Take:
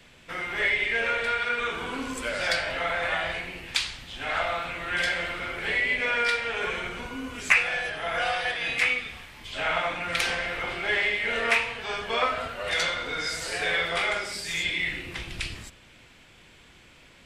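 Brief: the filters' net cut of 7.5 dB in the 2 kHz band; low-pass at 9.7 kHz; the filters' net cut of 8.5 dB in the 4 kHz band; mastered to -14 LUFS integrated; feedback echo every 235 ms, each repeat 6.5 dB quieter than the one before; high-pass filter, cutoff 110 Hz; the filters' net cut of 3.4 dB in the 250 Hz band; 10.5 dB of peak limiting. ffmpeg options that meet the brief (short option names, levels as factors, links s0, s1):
-af "highpass=110,lowpass=9700,equalizer=f=250:t=o:g=-4,equalizer=f=2000:t=o:g=-7,equalizer=f=4000:t=o:g=-8.5,alimiter=level_in=1.06:limit=0.0631:level=0:latency=1,volume=0.944,aecho=1:1:235|470|705|940|1175|1410:0.473|0.222|0.105|0.0491|0.0231|0.0109,volume=9.44"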